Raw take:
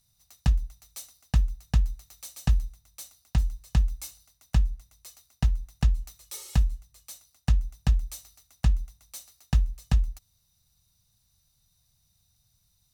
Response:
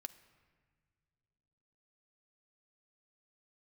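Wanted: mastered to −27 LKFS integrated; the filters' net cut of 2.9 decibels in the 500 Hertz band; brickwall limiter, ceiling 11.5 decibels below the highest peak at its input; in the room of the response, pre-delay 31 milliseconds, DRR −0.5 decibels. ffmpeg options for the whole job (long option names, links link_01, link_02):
-filter_complex "[0:a]equalizer=frequency=500:width_type=o:gain=-4,alimiter=limit=-23.5dB:level=0:latency=1,asplit=2[link_01][link_02];[1:a]atrim=start_sample=2205,adelay=31[link_03];[link_02][link_03]afir=irnorm=-1:irlink=0,volume=5dB[link_04];[link_01][link_04]amix=inputs=2:normalize=0,volume=9dB"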